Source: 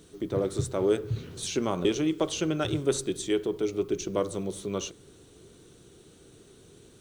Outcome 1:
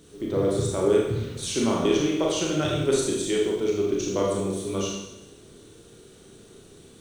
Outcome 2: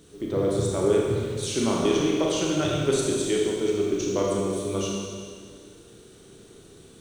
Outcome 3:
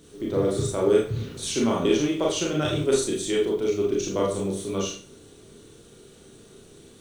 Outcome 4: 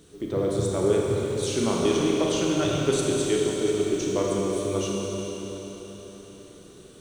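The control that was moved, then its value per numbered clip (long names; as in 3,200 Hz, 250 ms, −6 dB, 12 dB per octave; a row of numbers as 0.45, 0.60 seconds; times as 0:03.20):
four-comb reverb, RT60: 0.89, 1.9, 0.37, 4.4 seconds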